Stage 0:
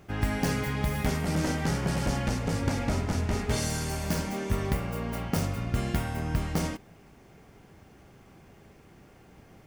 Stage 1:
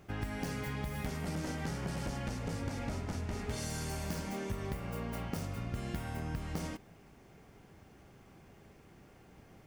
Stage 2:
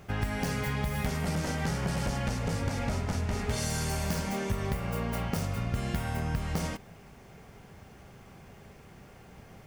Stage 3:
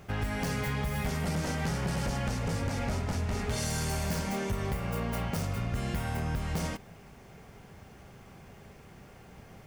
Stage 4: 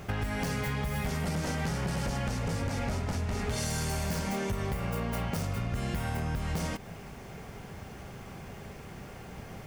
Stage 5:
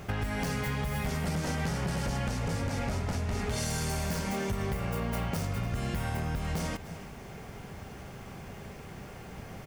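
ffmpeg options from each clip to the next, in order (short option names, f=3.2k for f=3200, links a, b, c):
-af "acompressor=threshold=-30dB:ratio=6,volume=-4dB"
-af "equalizer=f=310:t=o:w=0.43:g=-7.5,volume=7.5dB"
-af "volume=25.5dB,asoftclip=hard,volume=-25.5dB"
-af "acompressor=threshold=-37dB:ratio=4,volume=7dB"
-af "aecho=1:1:291:0.168"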